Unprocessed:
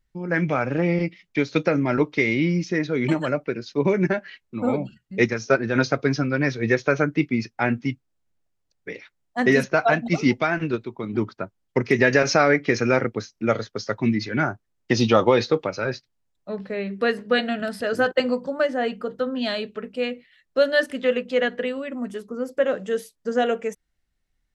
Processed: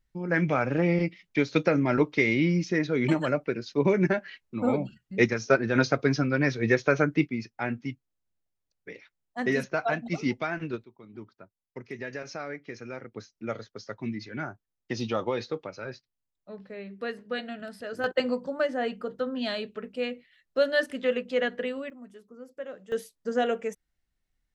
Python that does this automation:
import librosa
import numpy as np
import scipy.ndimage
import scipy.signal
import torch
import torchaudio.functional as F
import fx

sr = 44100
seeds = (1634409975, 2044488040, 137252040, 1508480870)

y = fx.gain(x, sr, db=fx.steps((0.0, -2.5), (7.27, -8.5), (10.84, -19.5), (13.12, -12.0), (18.04, -5.0), (21.9, -17.0), (22.92, -4.5)))